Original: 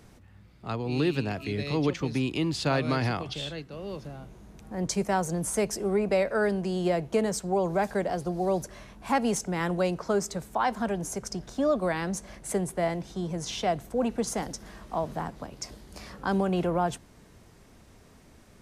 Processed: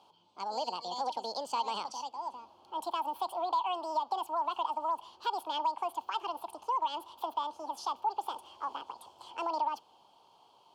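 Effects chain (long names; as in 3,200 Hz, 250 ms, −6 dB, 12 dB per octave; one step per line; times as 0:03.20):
formant filter e
downward compressor 2.5 to 1, threshold −37 dBFS, peak gain reduction 8.5 dB
wrong playback speed 45 rpm record played at 78 rpm
level +7 dB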